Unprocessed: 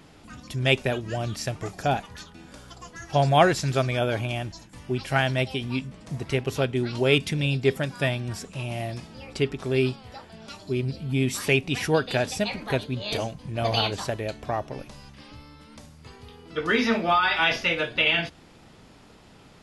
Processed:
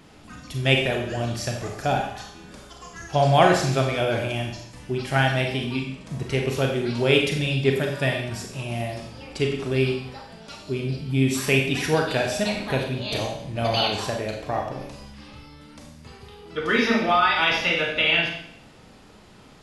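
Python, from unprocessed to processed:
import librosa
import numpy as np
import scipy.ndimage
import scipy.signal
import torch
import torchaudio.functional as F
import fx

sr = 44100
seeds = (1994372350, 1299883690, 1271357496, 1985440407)

y = fx.rev_schroeder(x, sr, rt60_s=0.68, comb_ms=30, drr_db=1.5)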